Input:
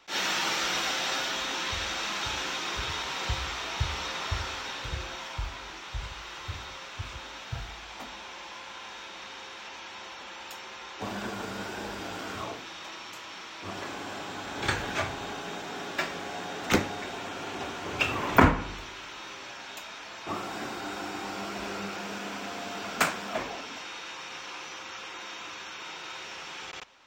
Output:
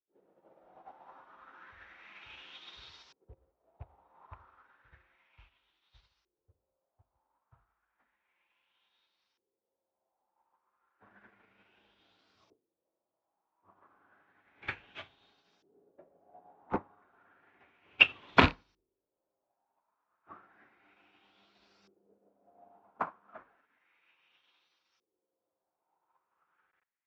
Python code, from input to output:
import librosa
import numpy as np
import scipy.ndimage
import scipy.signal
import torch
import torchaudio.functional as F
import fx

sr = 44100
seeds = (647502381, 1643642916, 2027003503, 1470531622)

y = fx.rattle_buzz(x, sr, strikes_db=-23.0, level_db=-13.0)
y = fx.filter_lfo_lowpass(y, sr, shape='saw_up', hz=0.32, low_hz=380.0, high_hz=5300.0, q=3.7)
y = fx.upward_expand(y, sr, threshold_db=-40.0, expansion=2.5)
y = y * librosa.db_to_amplitude(-3.0)